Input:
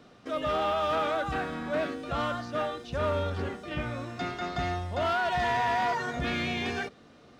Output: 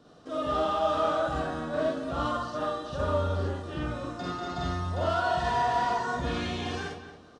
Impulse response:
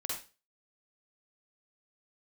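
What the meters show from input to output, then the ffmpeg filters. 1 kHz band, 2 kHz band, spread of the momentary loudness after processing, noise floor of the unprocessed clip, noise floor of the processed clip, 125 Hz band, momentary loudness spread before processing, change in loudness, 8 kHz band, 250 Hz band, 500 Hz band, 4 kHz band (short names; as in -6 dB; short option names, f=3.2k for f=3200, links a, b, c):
+1.0 dB, -3.5 dB, 8 LU, -55 dBFS, -53 dBFS, +2.5 dB, 8 LU, +0.5 dB, +1.5 dB, +1.0 dB, +1.0 dB, -1.0 dB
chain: -filter_complex "[0:a]equalizer=f=2.2k:w=2.4:g=-12.5,asplit=2[a][b];[b]adelay=226,lowpass=f=3.5k:p=1,volume=-10.5dB,asplit=2[c][d];[d]adelay=226,lowpass=f=3.5k:p=1,volume=0.25,asplit=2[e][f];[f]adelay=226,lowpass=f=3.5k:p=1,volume=0.25[g];[a][c][e][g]amix=inputs=4:normalize=0[h];[1:a]atrim=start_sample=2205,afade=t=out:st=0.17:d=0.01,atrim=end_sample=7938[i];[h][i]afir=irnorm=-1:irlink=0,aresample=22050,aresample=44100"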